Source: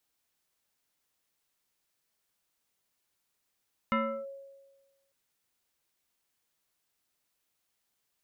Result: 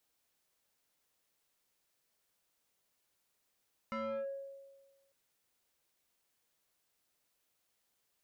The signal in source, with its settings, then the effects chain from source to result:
FM tone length 1.20 s, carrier 550 Hz, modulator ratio 1.41, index 1.9, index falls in 0.34 s linear, decay 1.29 s, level -23 dB
bell 530 Hz +3.5 dB 0.8 oct; limiter -32 dBFS; soft clip -34.5 dBFS

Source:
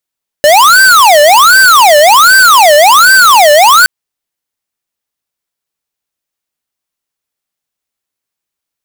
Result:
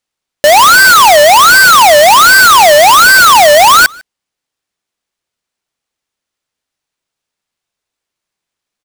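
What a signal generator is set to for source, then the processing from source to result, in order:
siren wail 586–1560 Hz 1.3/s square -3.5 dBFS 3.42 s
sample-rate reducer 16000 Hz, jitter 0%; outdoor echo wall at 26 m, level -26 dB

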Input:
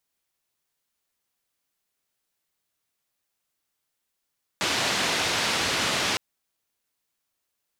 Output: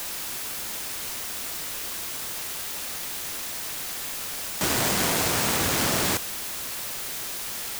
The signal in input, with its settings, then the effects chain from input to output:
noise band 90–4400 Hz, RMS -25.5 dBFS 1.56 s
switching spikes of -26.5 dBFS; low shelf 340 Hz +8.5 dB; noise-modulated delay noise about 4600 Hz, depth 0.096 ms

